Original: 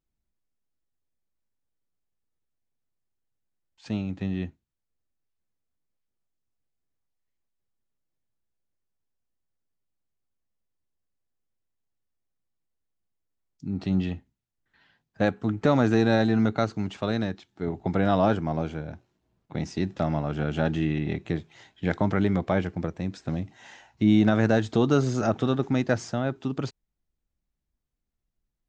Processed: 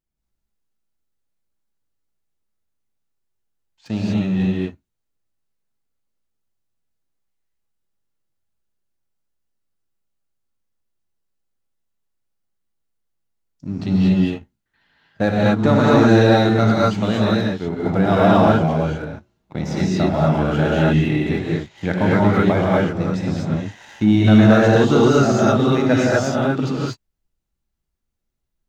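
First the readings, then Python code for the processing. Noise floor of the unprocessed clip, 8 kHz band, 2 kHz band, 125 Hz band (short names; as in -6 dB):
-82 dBFS, n/a, +9.5 dB, +9.5 dB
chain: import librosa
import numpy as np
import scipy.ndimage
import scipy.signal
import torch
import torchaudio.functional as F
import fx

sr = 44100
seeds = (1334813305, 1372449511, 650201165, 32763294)

y = fx.rev_gated(x, sr, seeds[0], gate_ms=270, shape='rising', drr_db=-5.5)
y = fx.leveller(y, sr, passes=1)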